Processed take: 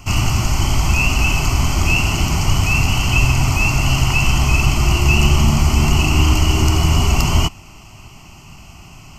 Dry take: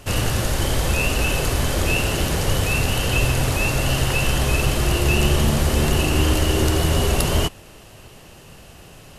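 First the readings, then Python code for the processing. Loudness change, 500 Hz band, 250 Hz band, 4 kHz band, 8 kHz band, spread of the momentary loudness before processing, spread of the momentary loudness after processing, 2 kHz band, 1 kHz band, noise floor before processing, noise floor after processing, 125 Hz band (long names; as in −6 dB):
+4.0 dB, −4.5 dB, +3.0 dB, +3.0 dB, +2.5 dB, 3 LU, 4 LU, +4.5 dB, +4.5 dB, −45 dBFS, −41 dBFS, +5.5 dB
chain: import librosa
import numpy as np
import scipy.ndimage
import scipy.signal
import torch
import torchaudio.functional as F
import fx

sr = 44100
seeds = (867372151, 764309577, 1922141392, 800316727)

y = fx.fixed_phaser(x, sr, hz=2500.0, stages=8)
y = y * librosa.db_to_amplitude(6.0)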